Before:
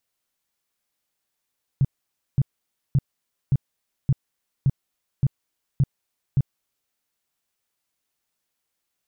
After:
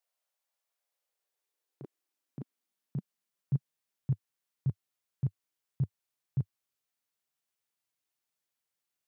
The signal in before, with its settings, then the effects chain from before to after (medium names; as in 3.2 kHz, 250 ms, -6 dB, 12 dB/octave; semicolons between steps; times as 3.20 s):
tone bursts 136 Hz, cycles 5, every 0.57 s, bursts 9, -14 dBFS
gate -17 dBFS, range -8 dB; bass shelf 210 Hz -8.5 dB; high-pass sweep 610 Hz -> 99 Hz, 0.72–4.24 s